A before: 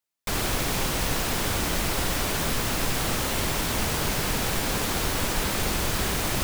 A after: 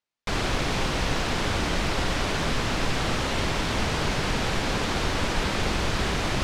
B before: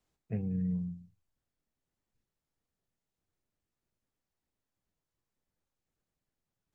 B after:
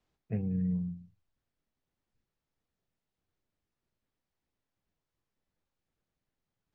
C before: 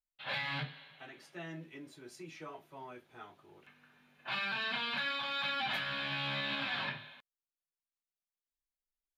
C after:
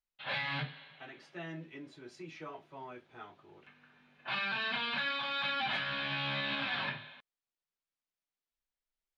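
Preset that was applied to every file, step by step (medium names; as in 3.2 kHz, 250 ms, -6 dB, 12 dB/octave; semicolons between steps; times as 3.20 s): low-pass 4.9 kHz 12 dB/octave; trim +1.5 dB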